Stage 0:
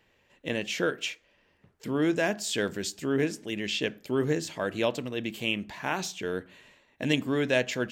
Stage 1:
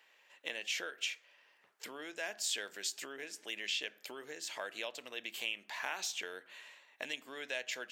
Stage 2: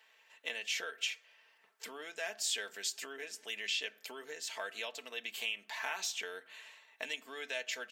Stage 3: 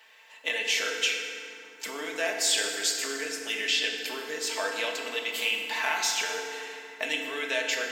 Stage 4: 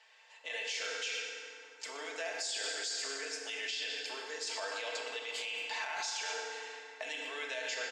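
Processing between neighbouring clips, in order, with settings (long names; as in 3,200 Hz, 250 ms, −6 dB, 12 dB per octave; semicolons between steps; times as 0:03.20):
dynamic equaliser 1,100 Hz, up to −5 dB, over −43 dBFS, Q 1.4; downward compressor 5 to 1, threshold −35 dBFS, peak gain reduction 13.5 dB; high-pass filter 850 Hz 12 dB per octave; level +2.5 dB
low-shelf EQ 250 Hz −8 dB; comb filter 4.5 ms, depth 56%
feedback delay network reverb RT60 2.6 s, low-frequency decay 1.45×, high-frequency decay 0.6×, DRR 0.5 dB; level +8.5 dB
loudspeaker in its box 420–8,600 Hz, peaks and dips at 550 Hz +3 dB, 780 Hz +4 dB, 4,800 Hz +6 dB, 6,900 Hz +3 dB; far-end echo of a speakerphone 120 ms, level −8 dB; brickwall limiter −20.5 dBFS, peak gain reduction 10 dB; level −7.5 dB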